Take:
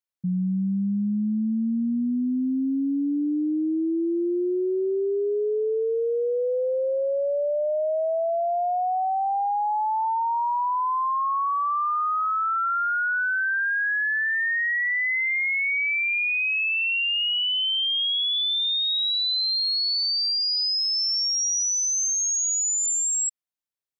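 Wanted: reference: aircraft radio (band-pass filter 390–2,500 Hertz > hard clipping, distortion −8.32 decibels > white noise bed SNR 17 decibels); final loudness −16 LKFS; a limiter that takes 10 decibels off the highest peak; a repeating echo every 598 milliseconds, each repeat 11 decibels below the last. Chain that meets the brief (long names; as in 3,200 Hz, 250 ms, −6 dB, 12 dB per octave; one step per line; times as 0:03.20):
brickwall limiter −31 dBFS
band-pass filter 390–2,500 Hz
repeating echo 598 ms, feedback 28%, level −11 dB
hard clipping −39.5 dBFS
white noise bed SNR 17 dB
level +24.5 dB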